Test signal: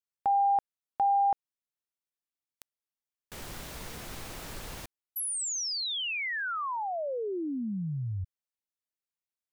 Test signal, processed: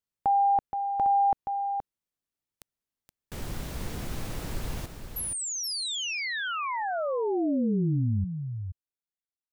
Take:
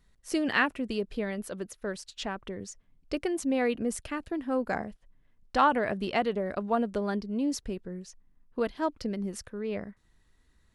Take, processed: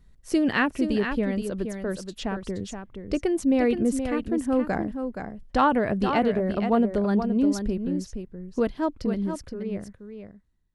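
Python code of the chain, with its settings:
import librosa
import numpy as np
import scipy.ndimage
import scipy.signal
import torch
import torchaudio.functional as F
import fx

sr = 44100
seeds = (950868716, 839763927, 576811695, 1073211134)

p1 = fx.fade_out_tail(x, sr, length_s=2.07)
p2 = fx.low_shelf(p1, sr, hz=400.0, db=10.5)
y = p2 + fx.echo_single(p2, sr, ms=473, db=-7.5, dry=0)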